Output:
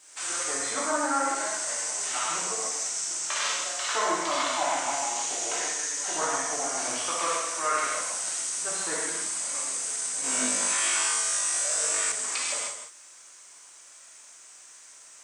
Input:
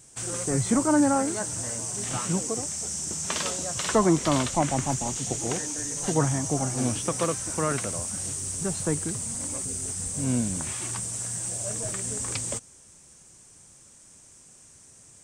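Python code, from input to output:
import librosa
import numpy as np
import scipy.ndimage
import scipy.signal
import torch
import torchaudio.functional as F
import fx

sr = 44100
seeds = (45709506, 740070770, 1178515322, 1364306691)

y = scipy.signal.sosfilt(scipy.signal.butter(2, 1000.0, 'highpass', fs=sr, output='sos'), x)
y = fx.air_absorb(y, sr, metres=54.0)
y = y + 10.0 ** (-8.5 / 20.0) * np.pad(y, (int(161 * sr / 1000.0), 0))[:len(y)]
y = fx.rev_gated(y, sr, seeds[0], gate_ms=170, shape='flat', drr_db=-6.5)
y = fx.rider(y, sr, range_db=4, speed_s=0.5)
y = fx.quant_dither(y, sr, seeds[1], bits=12, dither='triangular')
y = fx.high_shelf(y, sr, hz=5600.0, db=-4.0)
y = fx.room_flutter(y, sr, wall_m=3.4, rt60_s=0.59, at=(10.22, 12.12))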